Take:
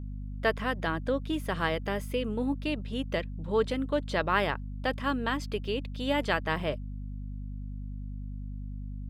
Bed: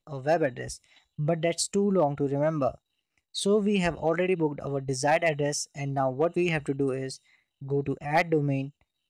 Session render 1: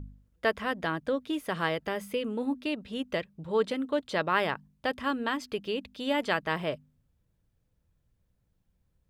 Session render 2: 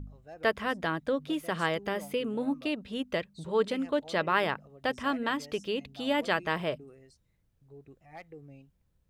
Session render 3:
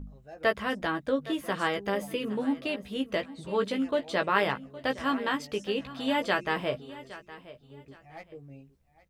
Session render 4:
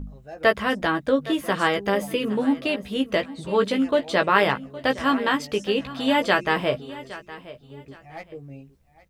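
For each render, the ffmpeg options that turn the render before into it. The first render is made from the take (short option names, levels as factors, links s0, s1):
-af "bandreject=f=50:t=h:w=4,bandreject=f=100:t=h:w=4,bandreject=f=150:t=h:w=4,bandreject=f=200:t=h:w=4,bandreject=f=250:t=h:w=4"
-filter_complex "[1:a]volume=0.0668[s0];[0:a][s0]amix=inputs=2:normalize=0"
-filter_complex "[0:a]asplit=2[s0][s1];[s1]adelay=15,volume=0.562[s2];[s0][s2]amix=inputs=2:normalize=0,aecho=1:1:814|1628:0.141|0.0353"
-af "volume=2.24,alimiter=limit=0.708:level=0:latency=1"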